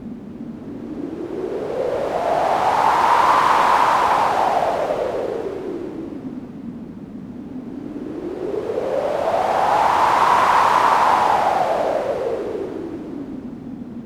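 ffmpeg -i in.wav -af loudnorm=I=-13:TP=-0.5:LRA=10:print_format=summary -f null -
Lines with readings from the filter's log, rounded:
Input Integrated:    -18.8 LUFS
Input True Peak:      -2.6 dBTP
Input LRA:            11.5 LU
Input Threshold:     -30.1 LUFS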